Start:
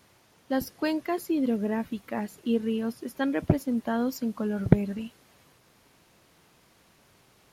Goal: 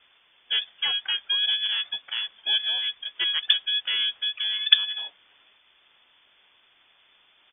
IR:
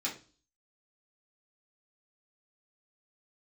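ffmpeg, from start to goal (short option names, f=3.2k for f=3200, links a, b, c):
-filter_complex "[0:a]lowpass=f=3.1k:t=q:w=0.5098,lowpass=f=3.1k:t=q:w=0.6013,lowpass=f=3.1k:t=q:w=0.9,lowpass=f=3.1k:t=q:w=2.563,afreqshift=-3600,asplit=3[a][b][c];[b]asetrate=22050,aresample=44100,atempo=2,volume=-16dB[d];[c]asetrate=33038,aresample=44100,atempo=1.33484,volume=-17dB[e];[a][d][e]amix=inputs=3:normalize=0,volume=1dB"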